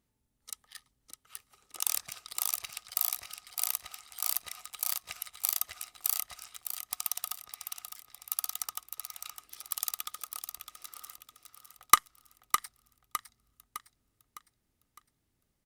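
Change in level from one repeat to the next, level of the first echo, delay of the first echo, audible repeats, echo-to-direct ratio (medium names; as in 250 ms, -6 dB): -7.5 dB, -8.0 dB, 608 ms, 4, -7.0 dB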